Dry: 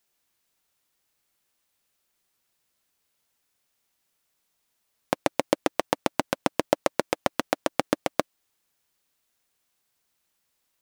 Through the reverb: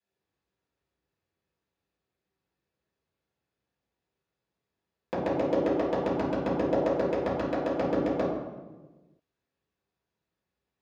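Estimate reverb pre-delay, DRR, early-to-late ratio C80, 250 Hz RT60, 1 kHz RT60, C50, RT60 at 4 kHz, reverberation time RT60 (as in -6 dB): 3 ms, -10.5 dB, 3.0 dB, 1.6 s, 1.1 s, -0.5 dB, 0.85 s, 1.3 s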